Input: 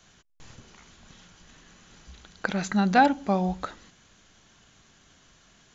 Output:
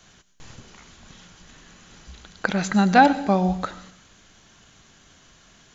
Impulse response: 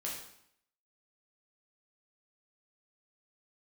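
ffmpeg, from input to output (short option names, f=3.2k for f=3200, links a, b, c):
-filter_complex "[0:a]asplit=2[a][b];[1:a]atrim=start_sample=2205,highshelf=f=4.6k:g=12,adelay=98[c];[b][c]afir=irnorm=-1:irlink=0,volume=-18.5dB[d];[a][d]amix=inputs=2:normalize=0,volume=4.5dB"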